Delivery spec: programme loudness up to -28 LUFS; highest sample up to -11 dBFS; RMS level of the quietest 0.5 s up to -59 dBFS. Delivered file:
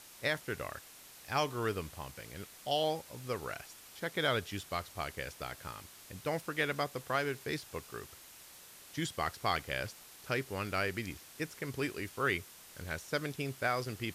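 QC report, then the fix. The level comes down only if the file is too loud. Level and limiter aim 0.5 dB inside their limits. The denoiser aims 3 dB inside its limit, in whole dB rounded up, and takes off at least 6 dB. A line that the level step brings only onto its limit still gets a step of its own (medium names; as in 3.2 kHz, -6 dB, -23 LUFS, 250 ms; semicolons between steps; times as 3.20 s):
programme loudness -37.0 LUFS: pass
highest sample -18.5 dBFS: pass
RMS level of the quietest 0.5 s -55 dBFS: fail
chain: noise reduction 7 dB, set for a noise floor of -55 dBFS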